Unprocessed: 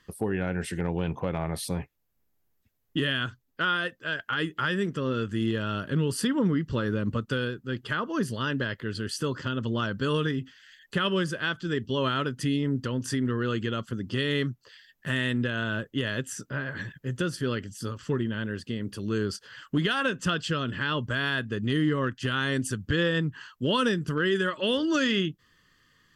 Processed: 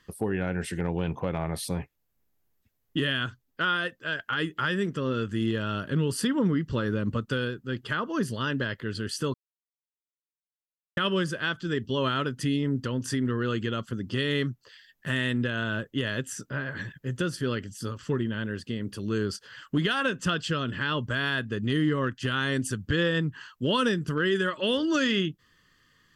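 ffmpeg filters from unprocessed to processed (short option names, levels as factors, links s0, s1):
-filter_complex "[0:a]asplit=3[s0][s1][s2];[s0]atrim=end=9.34,asetpts=PTS-STARTPTS,afade=t=out:st=9.336:d=0.004:c=hsin[s3];[s1]atrim=start=9.34:end=10.97,asetpts=PTS-STARTPTS,volume=0[s4];[s2]atrim=start=10.97,asetpts=PTS-STARTPTS,afade=t=in:d=0.004:c=hsin[s5];[s3][s4][s5]concat=n=3:v=0:a=1"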